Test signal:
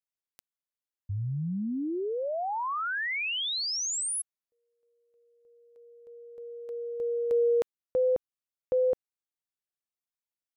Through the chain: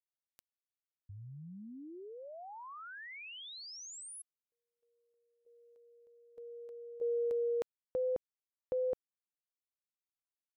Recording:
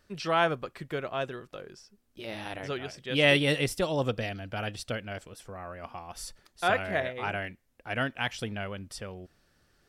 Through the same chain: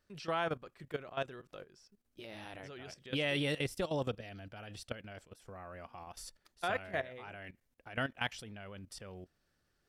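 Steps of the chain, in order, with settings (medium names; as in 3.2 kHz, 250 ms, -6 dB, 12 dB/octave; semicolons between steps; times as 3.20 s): level held to a coarse grid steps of 15 dB; trim -3 dB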